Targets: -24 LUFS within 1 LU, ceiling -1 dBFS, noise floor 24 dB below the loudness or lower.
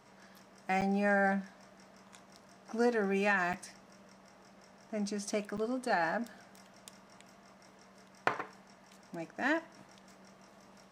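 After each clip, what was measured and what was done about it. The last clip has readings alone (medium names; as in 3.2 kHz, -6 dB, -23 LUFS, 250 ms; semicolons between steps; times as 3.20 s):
dropouts 3; longest dropout 7.1 ms; loudness -33.5 LUFS; peak level -14.0 dBFS; loudness target -24.0 LUFS
-> interpolate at 0.81/3.53/5.57 s, 7.1 ms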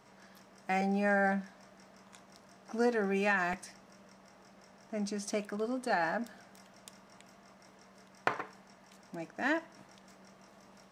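dropouts 0; loudness -33.5 LUFS; peak level -14.0 dBFS; loudness target -24.0 LUFS
-> trim +9.5 dB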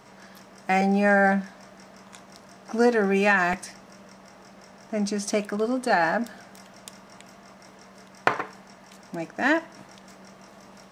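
loudness -24.0 LUFS; peak level -4.5 dBFS; noise floor -50 dBFS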